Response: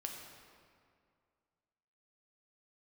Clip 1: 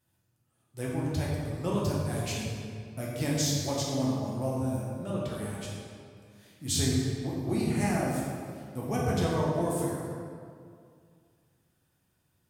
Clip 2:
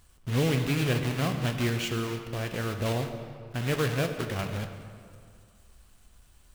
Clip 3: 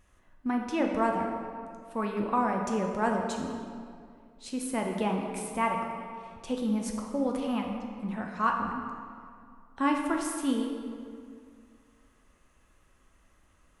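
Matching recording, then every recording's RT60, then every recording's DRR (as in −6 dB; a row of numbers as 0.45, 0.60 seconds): 3; 2.2, 2.2, 2.2 seconds; −5.5, 6.0, 1.0 decibels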